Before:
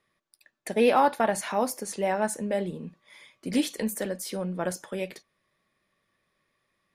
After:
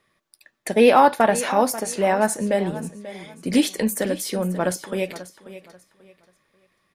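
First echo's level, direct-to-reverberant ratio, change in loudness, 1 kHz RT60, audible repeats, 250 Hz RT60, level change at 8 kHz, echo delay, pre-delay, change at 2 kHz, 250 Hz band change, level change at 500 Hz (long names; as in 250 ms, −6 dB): −15.0 dB, no reverb audible, +7.0 dB, no reverb audible, 2, no reverb audible, +7.0 dB, 538 ms, no reverb audible, +7.0 dB, +7.0 dB, +7.0 dB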